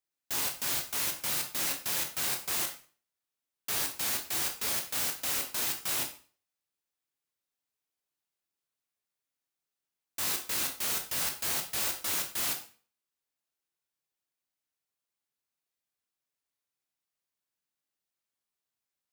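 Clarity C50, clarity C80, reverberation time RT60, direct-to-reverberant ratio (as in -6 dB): 9.5 dB, 14.5 dB, 0.40 s, 2.5 dB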